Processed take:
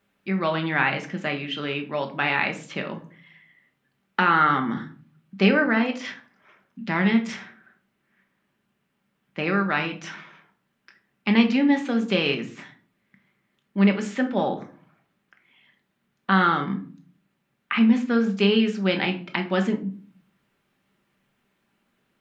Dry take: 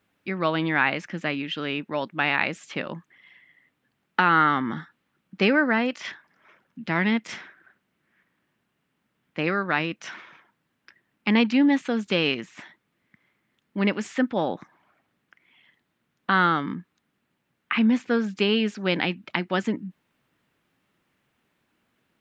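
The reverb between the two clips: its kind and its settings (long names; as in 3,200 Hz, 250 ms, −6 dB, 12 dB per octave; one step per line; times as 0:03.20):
rectangular room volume 360 cubic metres, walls furnished, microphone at 1.2 metres
level −1 dB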